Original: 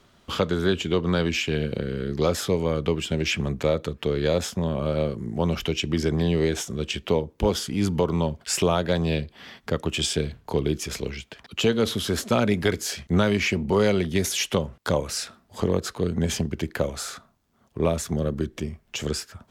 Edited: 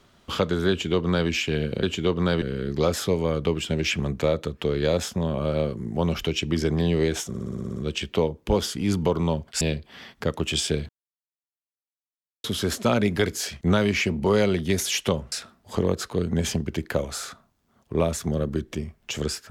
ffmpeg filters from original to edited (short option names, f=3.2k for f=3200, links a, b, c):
-filter_complex "[0:a]asplit=15[a][b][c][d][e][f][g][h][i][j][k][l][m][n][o];[a]atrim=end=1.832[p];[b]atrim=start=0.698:end=1.292[q];[c]atrim=start=1.828:end=6.752[r];[d]atrim=start=6.688:end=6.752[s];[e]atrim=start=6.688:end=6.752[t];[f]atrim=start=6.688:end=6.752[u];[g]atrim=start=6.688:end=6.752[v];[h]atrim=start=6.688:end=6.752[w];[i]atrim=start=6.688:end=6.752[x];[j]atrim=start=6.688:end=6.752[y];[k]atrim=start=6.688:end=8.542[z];[l]atrim=start=9.068:end=10.35,asetpts=PTS-STARTPTS,afade=t=out:st=1.278:d=0.004:c=hsin[aa];[m]atrim=start=10.35:end=11.9,asetpts=PTS-STARTPTS,volume=0[ab];[n]atrim=start=11.9:end=14.782,asetpts=PTS-STARTPTS,afade=t=in:d=0.004:c=hsin[ac];[o]atrim=start=15.168[ad];[p][q]acrossfade=d=0.004:c1=hsin:c2=hsin[ae];[ae][r]acrossfade=d=0.004:c1=hsin:c2=hsin[af];[af][s]acrossfade=d=0.004:c1=hsin:c2=hsin[ag];[ag][t]acrossfade=d=0.004:c1=hsin:c2=hsin[ah];[ah][u]acrossfade=d=0.004:c1=hsin:c2=hsin[ai];[ai][v]acrossfade=d=0.004:c1=hsin:c2=hsin[aj];[aj][w]acrossfade=d=0.004:c1=hsin:c2=hsin[ak];[ak][x]acrossfade=d=0.004:c1=hsin:c2=hsin[al];[al][y]acrossfade=d=0.004:c1=hsin:c2=hsin[am];[am][z]acrossfade=d=0.004:c1=hsin:c2=hsin[an];[aa][ab][ac]concat=n=3:v=0:a=1[ao];[an][ao]acrossfade=d=0.004:c1=hsin:c2=hsin[ap];[ap][ad]acrossfade=d=0.004:c1=hsin:c2=hsin"